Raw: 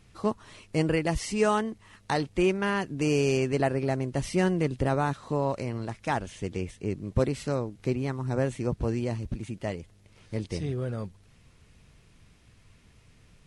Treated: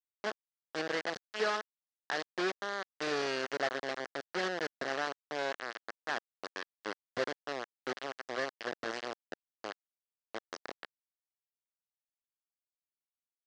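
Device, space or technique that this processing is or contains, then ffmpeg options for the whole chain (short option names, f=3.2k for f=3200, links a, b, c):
hand-held game console: -af "acrusher=bits=3:mix=0:aa=0.000001,highpass=430,equalizer=f=920:t=q:w=4:g=-7,equalizer=f=1.7k:t=q:w=4:g=5,equalizer=f=2.4k:t=q:w=4:g=-7,equalizer=f=3.6k:t=q:w=4:g=-4,lowpass=f=5.1k:w=0.5412,lowpass=f=5.1k:w=1.3066,volume=-6dB"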